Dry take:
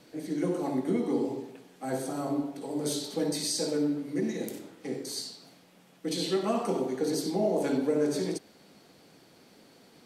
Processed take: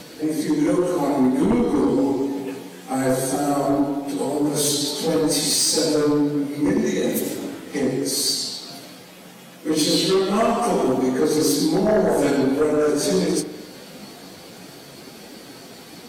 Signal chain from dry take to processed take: treble shelf 5.8 kHz +4.5 dB; in parallel at +2.5 dB: compression 5:1, threshold -38 dBFS, peak gain reduction 14 dB; on the sum: plain phase-vocoder stretch 1.6×; sine folder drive 7 dB, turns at -14 dBFS; on a send: reverse echo 39 ms -17 dB; on the sum: spring tank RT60 1.2 s, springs 43 ms, chirp 50 ms, DRR 9 dB

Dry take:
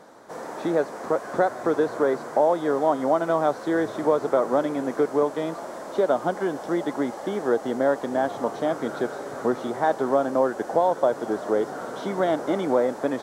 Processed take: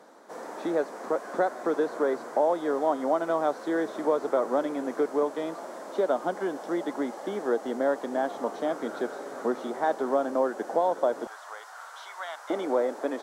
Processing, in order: high-pass 200 Hz 24 dB/octave, from 11.27 s 950 Hz, from 12.50 s 260 Hz; trim -4 dB

